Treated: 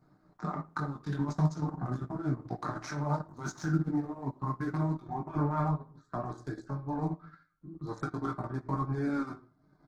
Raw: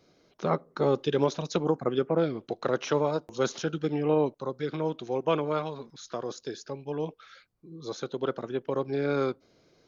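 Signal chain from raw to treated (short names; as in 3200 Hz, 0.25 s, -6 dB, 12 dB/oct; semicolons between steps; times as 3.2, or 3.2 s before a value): Wiener smoothing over 15 samples; negative-ratio compressor -30 dBFS, ratio -1; 4.99–6.24 high shelf 2200 Hz -8.5 dB; chorus 0.46 Hz, delay 15.5 ms, depth 5.4 ms; fixed phaser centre 1200 Hz, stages 4; comb 6.6 ms, depth 62%; on a send at -3.5 dB: reverb RT60 0.50 s, pre-delay 18 ms; on the sum: transient shaper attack +1 dB, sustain -11 dB; gain +4 dB; Opus 16 kbps 48000 Hz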